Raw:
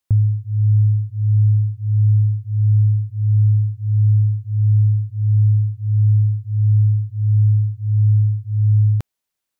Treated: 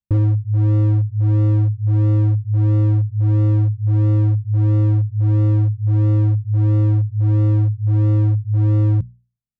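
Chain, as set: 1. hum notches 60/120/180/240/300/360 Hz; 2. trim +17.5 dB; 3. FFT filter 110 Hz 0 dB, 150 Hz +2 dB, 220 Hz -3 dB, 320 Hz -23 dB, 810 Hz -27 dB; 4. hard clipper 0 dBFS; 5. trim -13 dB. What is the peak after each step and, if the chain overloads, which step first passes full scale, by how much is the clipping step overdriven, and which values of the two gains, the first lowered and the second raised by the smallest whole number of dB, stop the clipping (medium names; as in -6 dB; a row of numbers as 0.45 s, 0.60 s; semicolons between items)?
-9.0 dBFS, +8.5 dBFS, +8.5 dBFS, 0.0 dBFS, -13.0 dBFS; step 2, 8.5 dB; step 2 +8.5 dB, step 5 -4 dB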